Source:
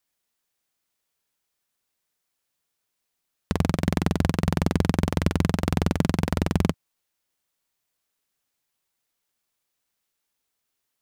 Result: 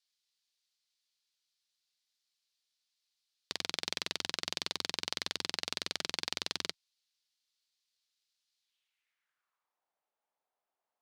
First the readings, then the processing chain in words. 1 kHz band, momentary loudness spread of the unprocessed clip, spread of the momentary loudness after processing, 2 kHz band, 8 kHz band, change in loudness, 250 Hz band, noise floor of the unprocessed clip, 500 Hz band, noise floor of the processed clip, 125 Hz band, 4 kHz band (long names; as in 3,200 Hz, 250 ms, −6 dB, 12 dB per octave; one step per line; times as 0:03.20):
−13.5 dB, 3 LU, 2 LU, −6.0 dB, −1.5 dB, −11.0 dB, −27.0 dB, −80 dBFS, −17.5 dB, below −85 dBFS, −33.5 dB, +4.0 dB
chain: harmonic generator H 6 −12 dB, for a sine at −5.5 dBFS
band-pass filter sweep 4,300 Hz → 740 Hz, 0:08.58–0:09.88
level +4.5 dB